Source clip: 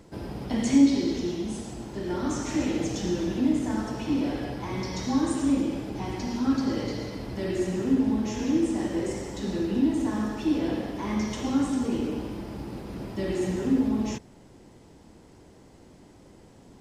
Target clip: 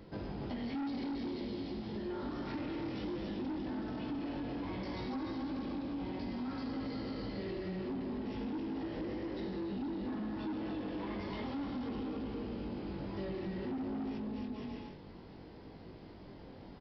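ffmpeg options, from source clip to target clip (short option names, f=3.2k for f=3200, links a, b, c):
-af "aecho=1:1:280|476|613.2|709.2|776.5:0.631|0.398|0.251|0.158|0.1,flanger=delay=19:depth=2.2:speed=0.57,aresample=11025,asoftclip=type=tanh:threshold=-26dB,aresample=44100,acompressor=threshold=-39dB:ratio=6,volume=1.5dB"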